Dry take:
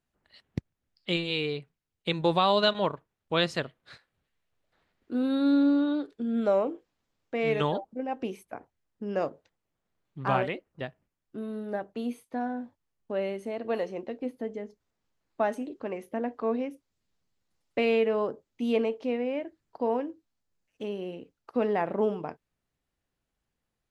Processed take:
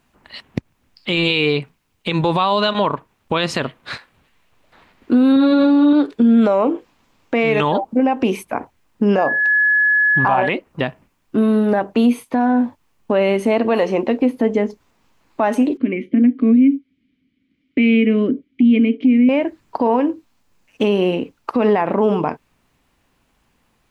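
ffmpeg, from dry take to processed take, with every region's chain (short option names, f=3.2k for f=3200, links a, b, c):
-filter_complex "[0:a]asettb=1/sr,asplit=3[a][b][c];[a]atrim=end=5.324[d];[b]atrim=start=5.32:end=5.93,asetpts=PTS-STARTPTS,afade=t=in:d=0.004:c=qsin,afade=t=out:st=0.606:d=0.004:c=qsin,bandreject=f=1.5k:w=9.3,acrossover=split=4600[e][f];[f]acompressor=threshold=-59dB:ratio=4:attack=1:release=60[g];[e][g]amix=inputs=2:normalize=0,asplit=2[h][i];[i]adelay=41,volume=-3.5dB[j];[h][j]amix=inputs=2:normalize=0,atrim=end_sample=26901[k];[c]atrim=start=5.926[l];[d][k]acrossfade=d=0.004:c1=hsin:c2=qsin[m];[m][l]acrossfade=d=0.004:c1=qsin:c2=hsin,asettb=1/sr,asplit=3[n][o][p];[n]atrim=end=9.184[q];[o]atrim=start=9.18:end=10.49,asetpts=PTS-STARTPTS,afade=t=in:d=0.004:c=qsin,afade=t=out:st=1.306:d=0.004:c=qsin,equalizer=f=780:w=1.8:g=10.5,aeval=exprs='val(0)+0.0251*sin(2*PI*1700*n/s)':c=same[r];[p]atrim=start=10.486[s];[q][r]acrossfade=d=0.004:c1=hsin:c2=qsin[t];[t][s]acrossfade=d=0.004:c1=qsin:c2=hsin,asettb=1/sr,asplit=3[u][v][w];[u]atrim=end=15.774[x];[v]atrim=start=15.77:end=19.29,asetpts=PTS-STARTPTS,afade=t=in:d=0.004:c=qsin,afade=t=out:st=3.516:d=0.004:c=qsin,asplit=3[y][z][aa];[y]bandpass=f=270:t=q:w=8,volume=0dB[ab];[z]bandpass=f=2.29k:t=q:w=8,volume=-6dB[ac];[aa]bandpass=f=3.01k:t=q:w=8,volume=-9dB[ad];[ab][ac][ad]amix=inputs=3:normalize=0,acontrast=63,aemphasis=mode=reproduction:type=bsi[ae];[w]atrim=start=19.286[af];[x][ae]acrossfade=d=0.004:c1=hsin:c2=qsin[ag];[ag][af]acrossfade=d=0.004:c1=qsin:c2=hsin,equalizer=f=250:t=o:w=0.67:g=5,equalizer=f=1k:t=o:w=0.67:g=7,equalizer=f=2.5k:t=o:w=0.67:g=5,acompressor=threshold=-30dB:ratio=2,alimiter=level_in=24.5dB:limit=-1dB:release=50:level=0:latency=1,volume=-6dB"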